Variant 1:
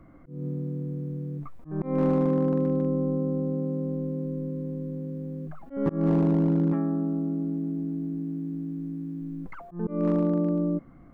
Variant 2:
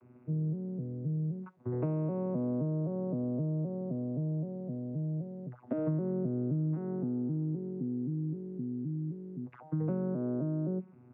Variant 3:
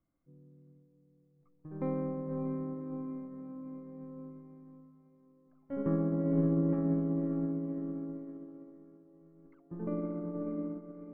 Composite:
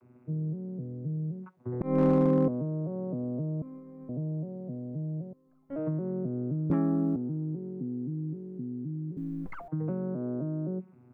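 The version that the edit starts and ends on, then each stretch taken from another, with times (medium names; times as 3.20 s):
2
1.81–2.48 s: from 1
3.62–4.09 s: from 3
5.33–5.76 s: from 3
6.70–7.16 s: from 1
9.17–9.68 s: from 1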